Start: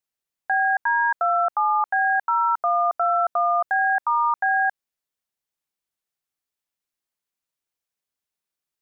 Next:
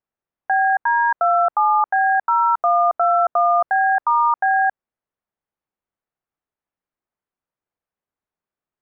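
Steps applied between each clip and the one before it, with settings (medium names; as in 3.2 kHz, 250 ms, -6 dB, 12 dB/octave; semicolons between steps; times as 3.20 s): low-pass 1.4 kHz 12 dB/octave; trim +5.5 dB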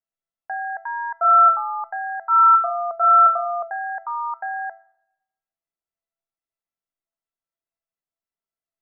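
feedback comb 670 Hz, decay 0.37 s, mix 90%; on a send at -22 dB: reverberation RT60 1.0 s, pre-delay 6 ms; on the sum: trim +8.5 dB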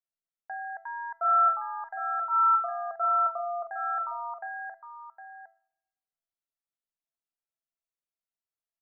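delay 760 ms -9.5 dB; trim -9 dB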